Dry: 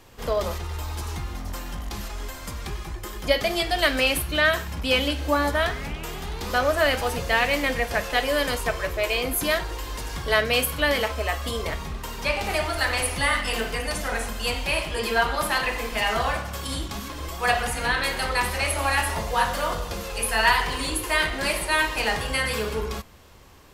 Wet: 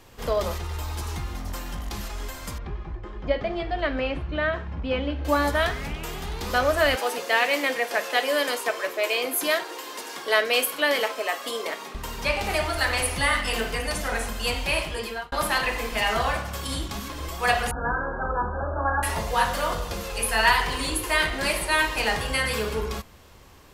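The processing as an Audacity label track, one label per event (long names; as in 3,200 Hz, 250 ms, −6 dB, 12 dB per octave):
2.580000	5.250000	head-to-tape spacing loss at 10 kHz 41 dB
6.960000	11.950000	high-pass filter 280 Hz 24 dB per octave
14.820000	15.320000	fade out linear
17.710000	19.030000	linear-phase brick-wall low-pass 1,700 Hz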